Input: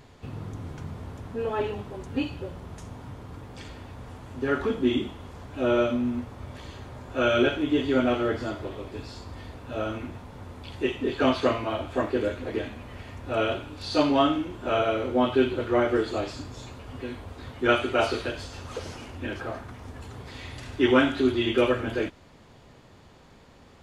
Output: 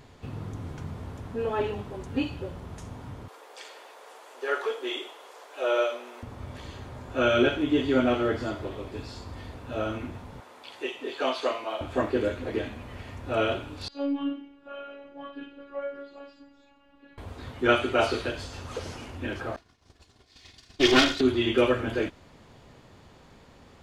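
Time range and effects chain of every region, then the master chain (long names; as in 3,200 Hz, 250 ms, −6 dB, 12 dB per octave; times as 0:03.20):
0:03.28–0:06.23: Butterworth high-pass 420 Hz + high-shelf EQ 5,000 Hz +5 dB
0:10.40–0:11.81: high-pass filter 540 Hz + dynamic equaliser 1,600 Hz, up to −5 dB, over −43 dBFS, Q 1.2
0:13.88–0:17.18: low-pass filter 3,500 Hz + stiff-string resonator 140 Hz, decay 0.39 s, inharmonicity 0.008 + phases set to zero 281 Hz
0:19.56–0:21.21: lower of the sound and its delayed copy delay 2.8 ms + downward expander −31 dBFS + parametric band 4,900 Hz +14 dB 1.4 octaves
whole clip: no processing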